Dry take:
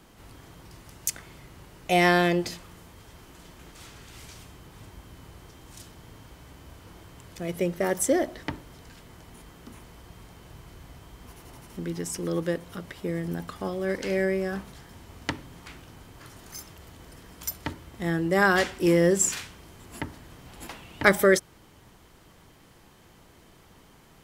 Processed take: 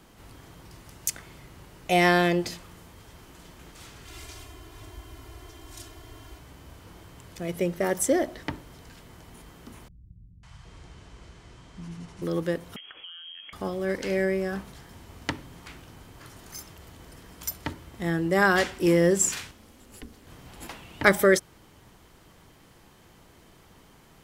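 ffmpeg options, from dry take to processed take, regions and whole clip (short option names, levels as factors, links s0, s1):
-filter_complex "[0:a]asettb=1/sr,asplit=3[s0][s1][s2];[s0]atrim=end=4.054[s3];[s1]atrim=start=4.05:end=6.39,asetpts=PTS-STARTPTS,afade=t=in:d=0.004:c=qsin,afade=t=out:st=2.336:d=0.004:c=qsin,bandreject=f=240:w=6,aecho=1:1:2.9:0.9,atrim=end_sample=103194[s4];[s2]atrim=start=6.386[s5];[s3][s4]acrossfade=d=0.004:c1=hsin:c2=qsin[s6];[s6][s5]acrossfade=d=0.004:c1=qsin:c2=hsin,asettb=1/sr,asplit=3[s7][s8][s9];[s7]atrim=end=9.884[s10];[s8]atrim=start=9.88:end=12.22,asetpts=PTS-STARTPTS,afade=t=in:d=0.004:c=qsin,afade=t=out:st=2.336:d=0.004:c=qsin,lowpass=f=8100:w=0.5412,lowpass=f=8100:w=1.3066,acrossover=split=190|720[s11][s12][s13];[s13]adelay=550[s14];[s12]adelay=770[s15];[s11][s15][s14]amix=inputs=3:normalize=0,atrim=end_sample=103194[s16];[s9]atrim=start=12.216[s17];[s10][s16]acrossfade=d=0.004:c1=hsin:c2=qsin[s18];[s18][s17]acrossfade=d=0.004:c1=qsin:c2=hsin,asettb=1/sr,asplit=3[s19][s20][s21];[s19]atrim=end=12.764[s22];[s20]atrim=start=12.76:end=13.53,asetpts=PTS-STARTPTS,afade=t=in:d=0.004:c=qsin,afade=t=out:st=0.766:d=0.004:c=qsin,acompressor=threshold=0.0112:ratio=12:attack=3.2:release=140:knee=1:detection=peak,lowpass=f=2900:t=q:w=0.5098,lowpass=f=2900:t=q:w=0.6013,lowpass=f=2900:t=q:w=0.9,lowpass=f=2900:t=q:w=2.563,afreqshift=-3400[s23];[s21]atrim=start=13.526[s24];[s22][s23]acrossfade=d=0.004:c1=hsin:c2=qsin[s25];[s25][s24]acrossfade=d=0.004:c1=qsin:c2=hsin,asettb=1/sr,asplit=3[s26][s27][s28];[s26]atrim=end=19.514[s29];[s27]atrim=start=19.51:end=20.27,asetpts=PTS-STARTPTS,afade=t=in:d=0.004:c=qsin,afade=t=out:st=0.756:d=0.004:c=qsin,highpass=45,acrossover=split=180|3000[s30][s31][s32];[s31]acompressor=threshold=0.00251:ratio=2.5:attack=3.2:release=140:knee=2.83:detection=peak[s33];[s30][s33][s32]amix=inputs=3:normalize=0,aeval=exprs='val(0)*sin(2*PI*150*n/s)':c=same[s34];[s28]atrim=start=20.266[s35];[s29][s34]acrossfade=d=0.004:c1=hsin:c2=qsin[s36];[s36][s35]acrossfade=d=0.004:c1=qsin:c2=hsin"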